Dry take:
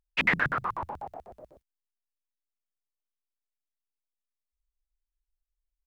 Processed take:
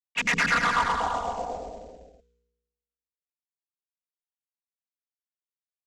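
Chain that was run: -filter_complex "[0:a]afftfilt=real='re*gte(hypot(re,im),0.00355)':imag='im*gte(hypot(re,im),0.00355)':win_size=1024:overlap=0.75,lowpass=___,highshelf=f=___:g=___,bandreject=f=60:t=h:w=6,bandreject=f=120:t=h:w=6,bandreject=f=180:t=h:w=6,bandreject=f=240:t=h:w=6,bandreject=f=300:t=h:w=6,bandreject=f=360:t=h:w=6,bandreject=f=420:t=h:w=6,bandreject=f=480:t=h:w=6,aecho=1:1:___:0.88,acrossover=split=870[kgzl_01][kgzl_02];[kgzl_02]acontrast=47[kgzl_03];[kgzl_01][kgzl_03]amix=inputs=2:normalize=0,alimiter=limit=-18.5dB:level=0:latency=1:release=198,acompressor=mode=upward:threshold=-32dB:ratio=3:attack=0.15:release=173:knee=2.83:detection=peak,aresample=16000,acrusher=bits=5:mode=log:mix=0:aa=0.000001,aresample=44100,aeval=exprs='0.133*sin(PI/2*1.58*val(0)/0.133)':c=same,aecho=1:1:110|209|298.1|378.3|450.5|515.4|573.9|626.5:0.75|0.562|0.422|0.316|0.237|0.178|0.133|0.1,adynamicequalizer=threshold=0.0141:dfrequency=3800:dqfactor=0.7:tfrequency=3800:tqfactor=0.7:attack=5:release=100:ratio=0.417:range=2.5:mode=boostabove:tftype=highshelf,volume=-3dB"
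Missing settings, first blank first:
5700, 2900, -10, 4.2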